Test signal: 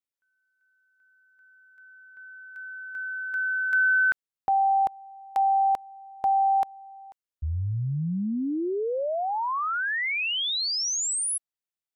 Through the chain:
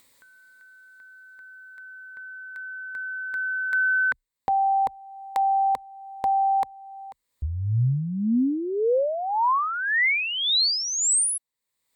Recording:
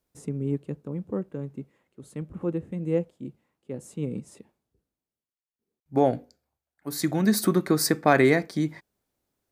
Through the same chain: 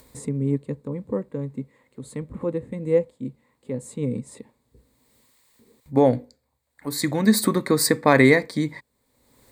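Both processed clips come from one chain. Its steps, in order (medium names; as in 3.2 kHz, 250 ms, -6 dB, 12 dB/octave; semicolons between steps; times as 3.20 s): rippled EQ curve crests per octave 0.99, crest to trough 9 dB; in parallel at -1 dB: upward compressor, threshold -30 dBFS; on the sum: trim -2.5 dB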